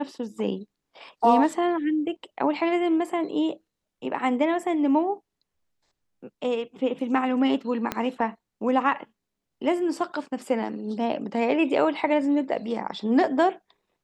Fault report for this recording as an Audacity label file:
7.920000	7.920000	click −11 dBFS

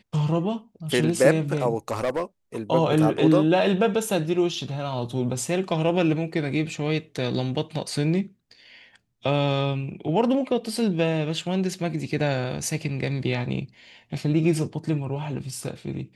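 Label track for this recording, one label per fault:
1.880000	2.230000	clipping −20 dBFS

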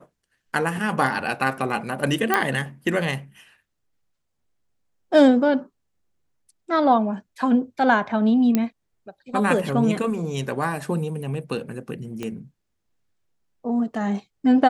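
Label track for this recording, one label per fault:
2.340000	2.340000	click −5 dBFS
8.550000	8.550000	click −7 dBFS
12.230000	12.230000	click −17 dBFS

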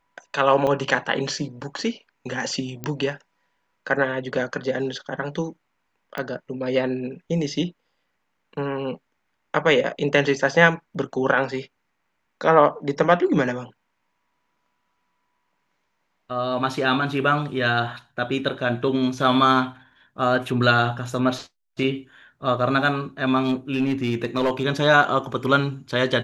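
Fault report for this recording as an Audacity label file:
0.670000	0.670000	drop-out 3.9 ms
2.840000	2.840000	click −14 dBFS
6.180000	6.180000	click −16 dBFS
23.430000	24.630000	clipping −16 dBFS

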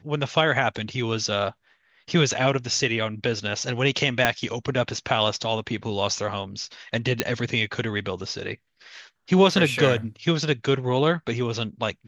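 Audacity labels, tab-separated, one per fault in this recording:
4.250000	4.250000	click −4 dBFS
7.200000	7.200000	click −4 dBFS

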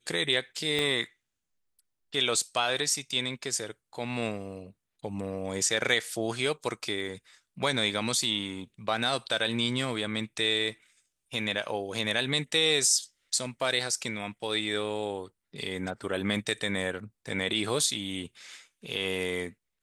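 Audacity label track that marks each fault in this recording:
0.790000	0.790000	click −16 dBFS

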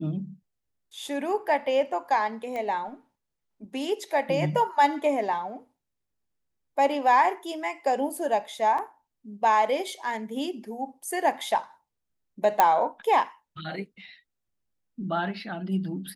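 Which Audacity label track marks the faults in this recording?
2.560000	2.560000	click −22 dBFS
8.780000	8.780000	drop-out 4 ms
12.600000	12.600000	click −6 dBFS

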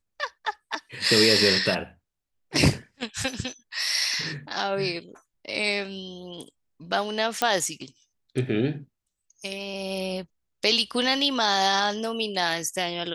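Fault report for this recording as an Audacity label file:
7.420000	7.420000	click −7 dBFS

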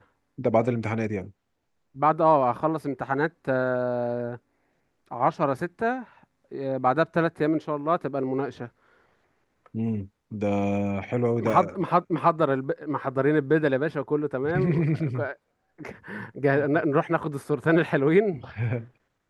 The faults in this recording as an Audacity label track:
11.500000	11.500000	drop-out 4.1 ms

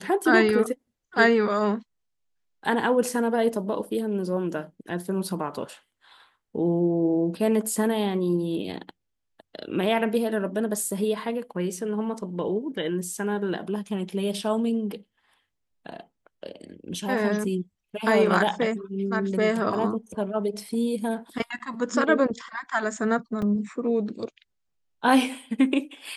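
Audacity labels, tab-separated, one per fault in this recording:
23.420000	23.420000	drop-out 3.8 ms

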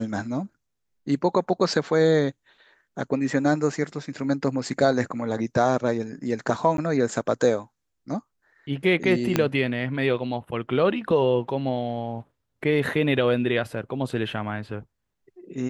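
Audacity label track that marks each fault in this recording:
6.770000	6.780000	drop-out
9.360000	9.360000	click −6 dBFS

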